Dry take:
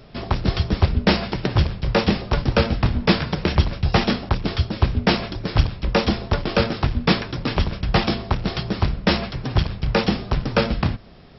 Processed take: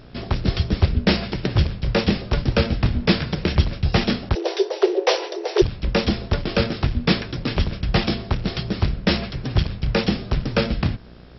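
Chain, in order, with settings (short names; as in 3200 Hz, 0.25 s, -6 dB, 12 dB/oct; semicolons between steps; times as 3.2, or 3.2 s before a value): buzz 60 Hz, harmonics 28, -47 dBFS -4 dB/oct; bell 960 Hz -6 dB 1.1 oct; 4.35–5.62 frequency shift +310 Hz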